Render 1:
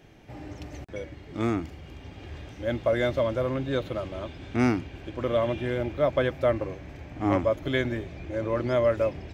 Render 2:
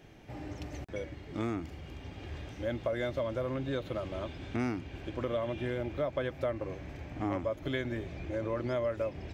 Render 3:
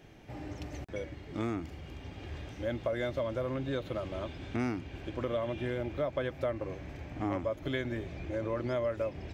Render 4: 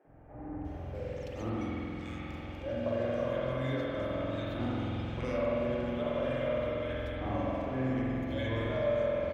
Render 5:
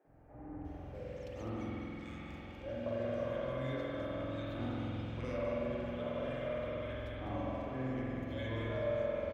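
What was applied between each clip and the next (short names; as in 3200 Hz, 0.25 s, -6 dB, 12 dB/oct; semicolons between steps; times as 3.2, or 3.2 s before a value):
compressor 3:1, threshold -30 dBFS, peak gain reduction 9 dB; gain -1.5 dB
nothing audible
three bands offset in time mids, lows, highs 50/650 ms, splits 310/1500 Hz; spring tank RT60 3.4 s, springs 46 ms, chirp 75 ms, DRR -6.5 dB; gain -4 dB
echo 0.202 s -8.5 dB; gain -6 dB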